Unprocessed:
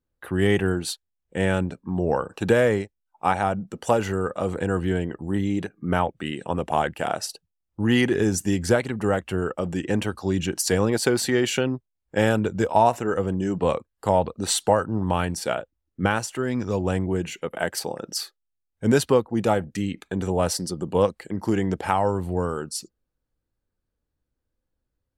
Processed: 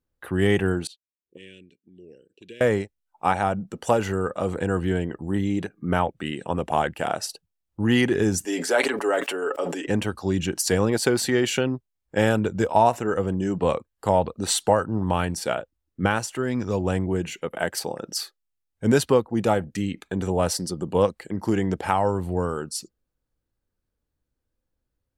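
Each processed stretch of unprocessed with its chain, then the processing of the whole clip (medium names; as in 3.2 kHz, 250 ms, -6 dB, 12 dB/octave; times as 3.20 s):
0.87–2.61 s: Chebyshev band-stop 390–2800 Hz, order 3 + auto-wah 350–1600 Hz, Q 2.2, up, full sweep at -28.5 dBFS
8.45–9.87 s: high-pass 340 Hz 24 dB/octave + comb 7.1 ms, depth 56% + decay stretcher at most 48 dB/s
whole clip: none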